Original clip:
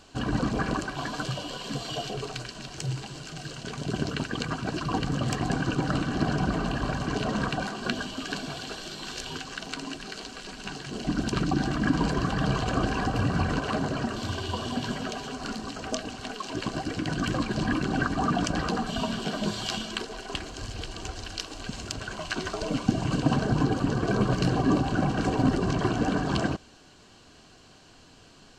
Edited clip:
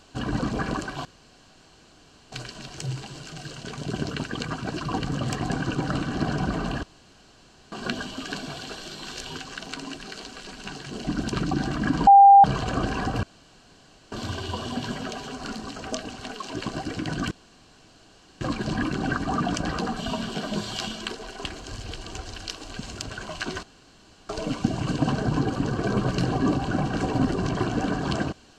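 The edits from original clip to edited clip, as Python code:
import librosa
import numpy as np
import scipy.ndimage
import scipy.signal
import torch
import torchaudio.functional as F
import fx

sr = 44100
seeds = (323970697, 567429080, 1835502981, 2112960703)

y = fx.edit(x, sr, fx.room_tone_fill(start_s=1.05, length_s=1.27),
    fx.room_tone_fill(start_s=6.83, length_s=0.89),
    fx.bleep(start_s=12.07, length_s=0.37, hz=796.0, db=-7.5),
    fx.room_tone_fill(start_s=13.23, length_s=0.89),
    fx.insert_room_tone(at_s=17.31, length_s=1.1),
    fx.insert_room_tone(at_s=22.53, length_s=0.66), tone=tone)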